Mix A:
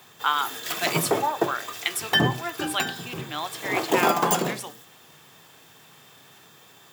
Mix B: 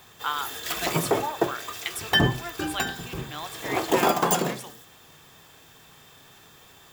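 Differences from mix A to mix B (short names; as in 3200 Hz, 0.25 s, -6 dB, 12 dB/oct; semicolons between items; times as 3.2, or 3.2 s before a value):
speech -5.5 dB; master: remove HPF 110 Hz 24 dB/oct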